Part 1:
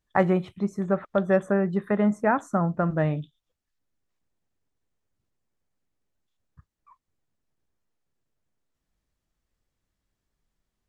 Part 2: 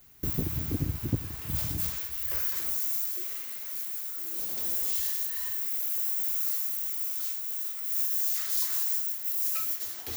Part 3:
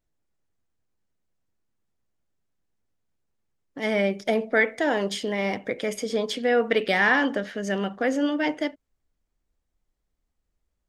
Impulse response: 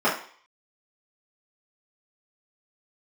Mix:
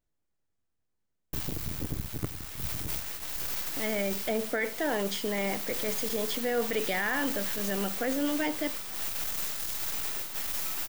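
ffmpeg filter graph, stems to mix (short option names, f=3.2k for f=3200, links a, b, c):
-filter_complex "[1:a]acrusher=bits=4:dc=4:mix=0:aa=0.000001,adelay=1100,volume=0.5dB[a];[2:a]volume=-3.5dB[b];[a][b]amix=inputs=2:normalize=0,alimiter=limit=-19dB:level=0:latency=1:release=14"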